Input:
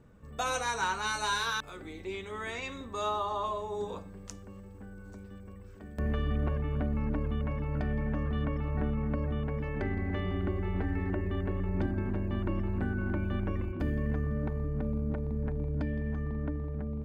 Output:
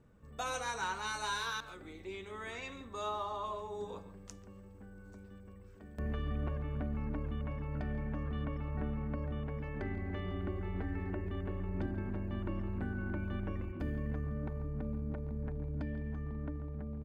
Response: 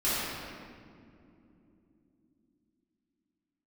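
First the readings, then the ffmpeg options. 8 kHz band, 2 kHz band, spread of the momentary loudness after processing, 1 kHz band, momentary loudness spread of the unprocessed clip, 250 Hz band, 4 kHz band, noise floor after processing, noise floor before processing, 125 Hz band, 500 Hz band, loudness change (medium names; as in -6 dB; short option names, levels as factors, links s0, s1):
no reading, -6.0 dB, 14 LU, -6.0 dB, 13 LU, -6.0 dB, -6.0 dB, -53 dBFS, -48 dBFS, -6.0 dB, -6.5 dB, -6.0 dB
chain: -filter_complex "[0:a]asplit=2[s0][s1];[s1]adelay=140,highpass=300,lowpass=3400,asoftclip=type=hard:threshold=0.0376,volume=0.224[s2];[s0][s2]amix=inputs=2:normalize=0,volume=0.501"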